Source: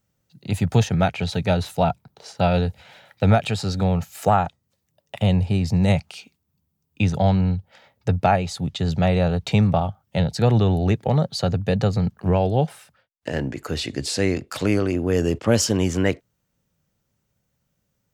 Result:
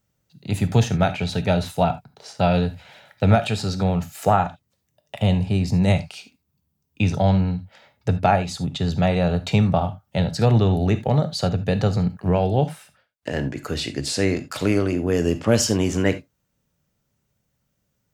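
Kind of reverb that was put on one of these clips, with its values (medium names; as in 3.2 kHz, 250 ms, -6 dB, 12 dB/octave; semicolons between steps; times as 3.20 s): gated-style reverb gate 100 ms flat, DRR 10 dB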